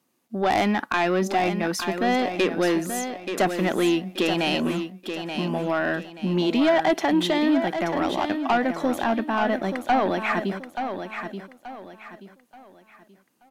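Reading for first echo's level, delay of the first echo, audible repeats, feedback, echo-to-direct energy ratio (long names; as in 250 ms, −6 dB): −8.0 dB, 880 ms, 3, 33%, −7.5 dB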